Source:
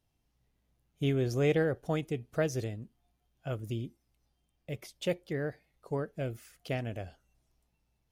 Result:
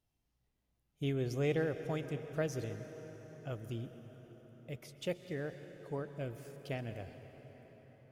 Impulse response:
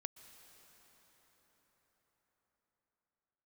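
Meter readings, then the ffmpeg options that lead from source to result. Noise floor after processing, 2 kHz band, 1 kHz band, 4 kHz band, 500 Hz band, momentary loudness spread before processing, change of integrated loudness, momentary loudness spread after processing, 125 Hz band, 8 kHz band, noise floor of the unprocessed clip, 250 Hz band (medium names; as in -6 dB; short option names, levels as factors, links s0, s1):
-82 dBFS, -5.0 dB, -5.0 dB, -5.5 dB, -5.5 dB, 16 LU, -6.0 dB, 20 LU, -5.0 dB, -5.5 dB, -78 dBFS, -5.5 dB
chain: -filter_complex "[1:a]atrim=start_sample=2205,asetrate=43659,aresample=44100[s0];[0:a][s0]afir=irnorm=-1:irlink=0,volume=0.841"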